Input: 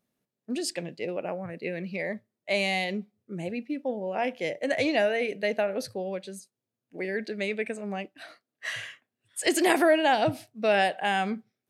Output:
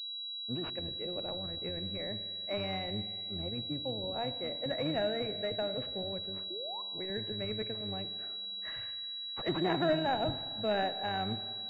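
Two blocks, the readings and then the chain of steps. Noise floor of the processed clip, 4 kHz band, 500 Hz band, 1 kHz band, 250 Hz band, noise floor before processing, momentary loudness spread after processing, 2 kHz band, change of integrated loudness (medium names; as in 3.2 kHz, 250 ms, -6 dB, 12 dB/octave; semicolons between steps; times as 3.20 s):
-41 dBFS, +3.0 dB, -8.0 dB, -8.0 dB, -7.0 dB, under -85 dBFS, 6 LU, -13.0 dB, -6.5 dB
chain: octave divider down 1 oct, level -1 dB; painted sound rise, 6.50–6.82 s, 330–1100 Hz -35 dBFS; spring tank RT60 2.3 s, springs 47/57 ms, chirp 45 ms, DRR 11.5 dB; class-D stage that switches slowly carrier 3.9 kHz; trim -8.5 dB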